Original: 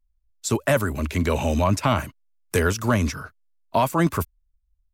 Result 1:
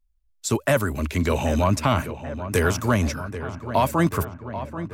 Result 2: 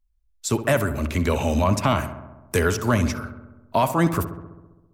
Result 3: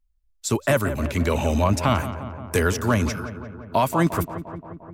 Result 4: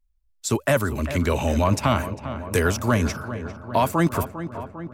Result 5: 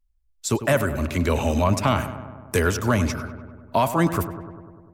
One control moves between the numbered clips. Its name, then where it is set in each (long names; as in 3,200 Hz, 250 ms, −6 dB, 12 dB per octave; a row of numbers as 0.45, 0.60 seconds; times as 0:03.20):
feedback echo with a low-pass in the loop, delay time: 786, 66, 175, 400, 99 milliseconds